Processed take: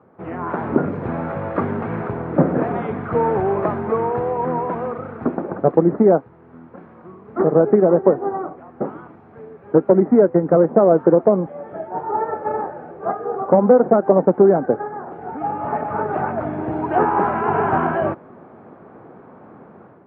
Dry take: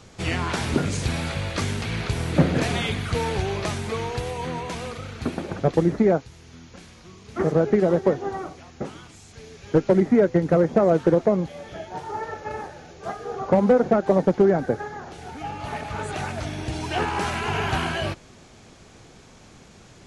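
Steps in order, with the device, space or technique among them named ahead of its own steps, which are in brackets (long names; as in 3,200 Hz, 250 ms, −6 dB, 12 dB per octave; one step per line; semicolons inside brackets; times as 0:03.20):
high-pass filter 210 Hz 12 dB per octave
action camera in a waterproof case (low-pass filter 1,300 Hz 24 dB per octave; automatic gain control gain up to 10 dB; AAC 96 kbit/s 44,100 Hz)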